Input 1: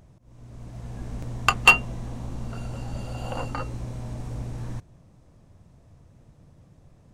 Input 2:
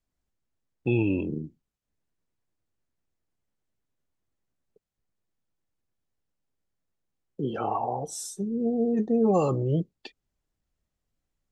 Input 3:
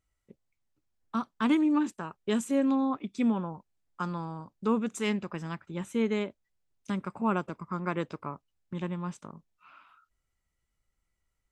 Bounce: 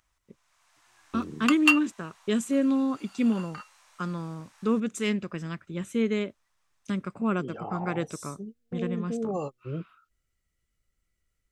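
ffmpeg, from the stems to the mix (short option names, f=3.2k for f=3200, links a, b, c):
-filter_complex "[0:a]highpass=f=1.1k:w=0.5412,highpass=f=1.1k:w=1.3066,volume=-6dB[a];[1:a]volume=-8.5dB[b];[2:a]equalizer=f=880:t=o:w=0.53:g=-11.5,volume=2.5dB,asplit=2[c][d];[d]apad=whole_len=507595[e];[b][e]sidechaingate=range=-48dB:threshold=-56dB:ratio=16:detection=peak[f];[a][f][c]amix=inputs=3:normalize=0"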